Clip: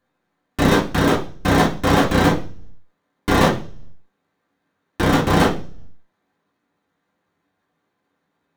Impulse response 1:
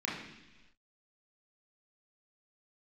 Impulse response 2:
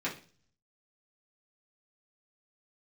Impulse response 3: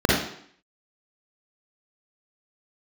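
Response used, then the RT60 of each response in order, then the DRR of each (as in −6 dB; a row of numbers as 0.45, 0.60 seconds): 2; non-exponential decay, 0.40 s, 0.65 s; −5.5, −7.0, −6.0 decibels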